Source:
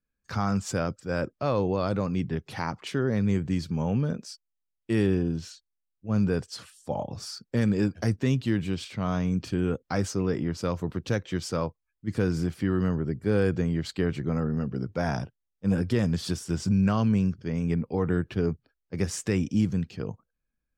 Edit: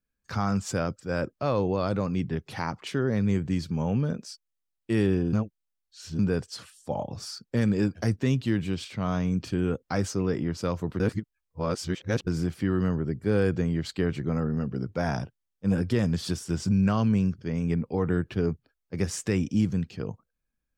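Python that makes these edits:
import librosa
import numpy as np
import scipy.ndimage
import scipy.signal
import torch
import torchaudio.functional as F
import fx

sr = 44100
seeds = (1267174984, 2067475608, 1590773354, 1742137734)

y = fx.edit(x, sr, fx.reverse_span(start_s=5.33, length_s=0.86),
    fx.reverse_span(start_s=11.0, length_s=1.27), tone=tone)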